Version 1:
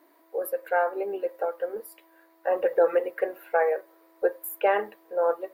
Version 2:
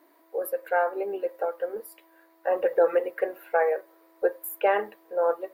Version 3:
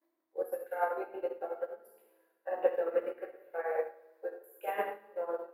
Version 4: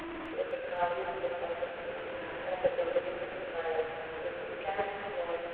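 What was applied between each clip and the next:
nothing audible
level quantiser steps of 15 dB; plate-style reverb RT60 1.3 s, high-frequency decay 0.9×, DRR -4.5 dB; upward expander 2.5:1, over -35 dBFS
delta modulation 16 kbps, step -34 dBFS; thinning echo 0.256 s, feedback 60%, level -7.5 dB

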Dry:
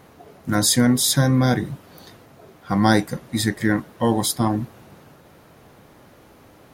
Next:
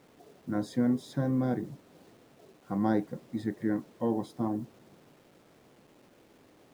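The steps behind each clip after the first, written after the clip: band-pass 340 Hz, Q 0.79; bit-crush 9-bit; gain -8 dB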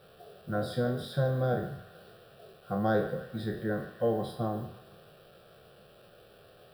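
spectral trails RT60 0.47 s; fixed phaser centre 1400 Hz, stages 8; narrowing echo 0.149 s, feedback 65%, band-pass 2000 Hz, level -11 dB; gain +5.5 dB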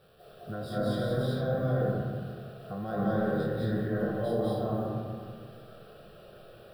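low shelf 140 Hz +4.5 dB; limiter -24 dBFS, peak gain reduction 9.5 dB; reverb RT60 1.8 s, pre-delay 0.16 s, DRR -7.5 dB; gain -4.5 dB

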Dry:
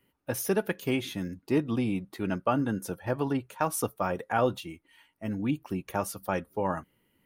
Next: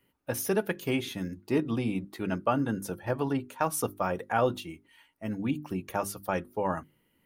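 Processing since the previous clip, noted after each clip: notches 50/100/150/200/250/300/350/400 Hz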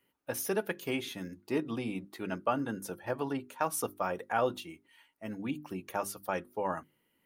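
low shelf 160 Hz -11.5 dB; gain -2.5 dB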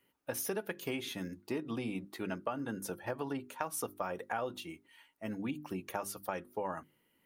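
compressor 6:1, threshold -34 dBFS, peak gain reduction 10 dB; gain +1 dB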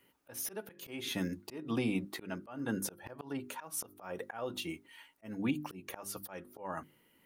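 auto swell 0.278 s; gain +5.5 dB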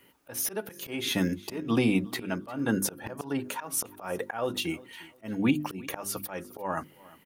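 feedback echo 0.353 s, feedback 28%, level -21.5 dB; gain +8.5 dB

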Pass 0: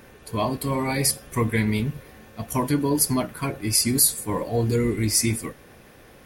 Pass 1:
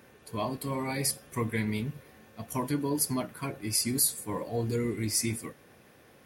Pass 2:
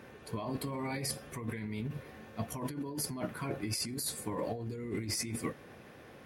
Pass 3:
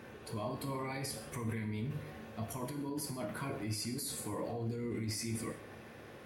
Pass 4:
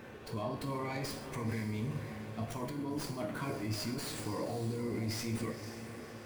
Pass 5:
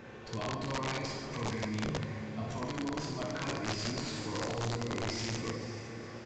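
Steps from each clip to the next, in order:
HPF 88 Hz; gain -7.5 dB
high shelf 5900 Hz -11.5 dB; negative-ratio compressor -37 dBFS, ratio -1
limiter -31.5 dBFS, peak gain reduction 8.5 dB; non-linear reverb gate 0.21 s falling, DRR 5 dB
diffused feedback echo 0.522 s, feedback 42%, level -10.5 dB; running maximum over 3 samples; gain +1.5 dB
reverse bouncing-ball echo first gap 60 ms, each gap 1.4×, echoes 5; wrapped overs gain 27.5 dB; downsampling 16000 Hz

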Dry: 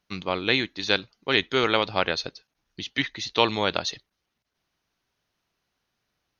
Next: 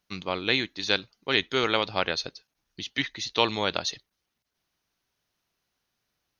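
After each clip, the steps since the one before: high shelf 5900 Hz +7.5 dB; gain -3 dB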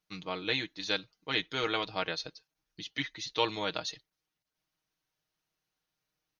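comb 6.4 ms; gain -8 dB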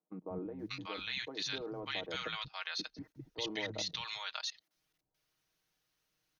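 level quantiser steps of 22 dB; three bands offset in time mids, lows, highs 0.19/0.59 s, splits 190/850 Hz; gain +6.5 dB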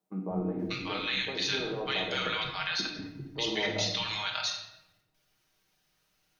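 notches 60/120 Hz; shoebox room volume 380 m³, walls mixed, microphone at 1.2 m; gain +5.5 dB

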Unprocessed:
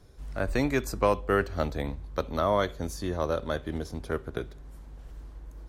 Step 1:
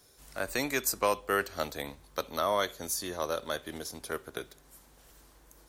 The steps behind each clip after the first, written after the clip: RIAA curve recording; gain -2 dB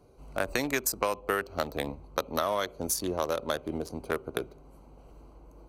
Wiener smoothing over 25 samples; compressor 6:1, threshold -34 dBFS, peak gain reduction 11.5 dB; gain +9 dB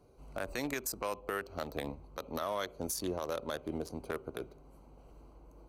limiter -20.5 dBFS, peak gain reduction 9.5 dB; gain -4 dB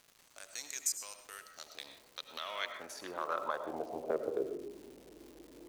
digital reverb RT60 0.93 s, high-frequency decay 0.25×, pre-delay 60 ms, DRR 8 dB; band-pass sweep 6800 Hz -> 350 Hz, 1.54–4.67; crackle 430/s -57 dBFS; gain +9 dB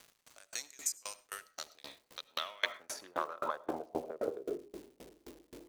dB-ramp tremolo decaying 3.8 Hz, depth 29 dB; gain +8.5 dB

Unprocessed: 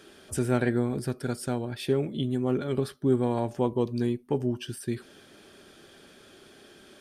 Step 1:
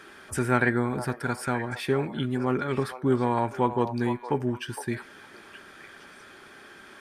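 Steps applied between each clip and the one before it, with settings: band shelf 1400 Hz +10 dB; delay with a stepping band-pass 0.462 s, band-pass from 760 Hz, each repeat 1.4 oct, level -7.5 dB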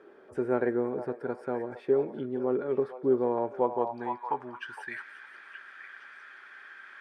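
thin delay 0.177 s, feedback 67%, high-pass 2900 Hz, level -13 dB; band-pass sweep 460 Hz -> 1700 Hz, 3.41–4.95; gain +3.5 dB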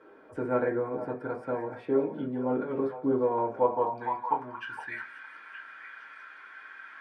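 reverb, pre-delay 4 ms, DRR -4.5 dB; gain -3.5 dB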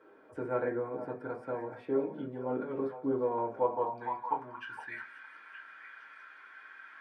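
HPF 58 Hz; notches 50/100/150/200/250 Hz; gain -4.5 dB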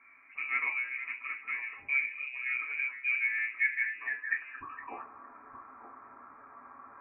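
inverted band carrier 2700 Hz

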